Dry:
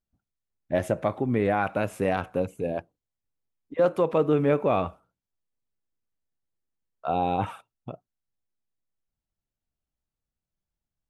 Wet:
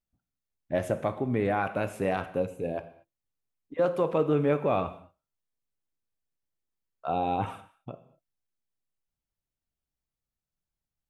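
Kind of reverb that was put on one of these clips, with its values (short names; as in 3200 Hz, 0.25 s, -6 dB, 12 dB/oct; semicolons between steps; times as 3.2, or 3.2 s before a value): non-linear reverb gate 0.26 s falling, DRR 10 dB; gain -3 dB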